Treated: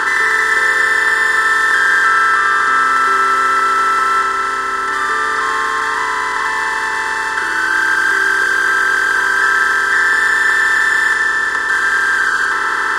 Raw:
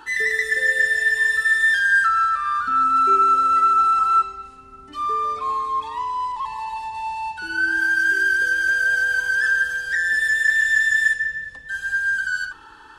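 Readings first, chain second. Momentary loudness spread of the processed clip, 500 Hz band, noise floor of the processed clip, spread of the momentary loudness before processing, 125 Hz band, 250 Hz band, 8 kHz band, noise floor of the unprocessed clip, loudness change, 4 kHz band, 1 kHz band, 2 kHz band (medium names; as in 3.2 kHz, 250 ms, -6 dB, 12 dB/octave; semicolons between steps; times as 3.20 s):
5 LU, +9.5 dB, -18 dBFS, 13 LU, no reading, +8.5 dB, +10.0 dB, -44 dBFS, +6.0 dB, +10.0 dB, +5.5 dB, +6.5 dB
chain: spectral levelling over time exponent 0.2; trim -1 dB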